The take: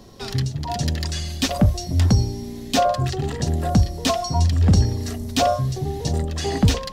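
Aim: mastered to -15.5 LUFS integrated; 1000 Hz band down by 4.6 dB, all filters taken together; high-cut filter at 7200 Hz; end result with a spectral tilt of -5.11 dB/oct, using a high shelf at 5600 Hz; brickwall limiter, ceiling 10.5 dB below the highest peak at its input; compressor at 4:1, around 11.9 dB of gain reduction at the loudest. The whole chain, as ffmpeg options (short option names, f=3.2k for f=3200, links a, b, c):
-af "lowpass=7.2k,equalizer=f=1k:t=o:g=-8.5,highshelf=f=5.6k:g=8.5,acompressor=threshold=-26dB:ratio=4,volume=17dB,alimiter=limit=-7dB:level=0:latency=1"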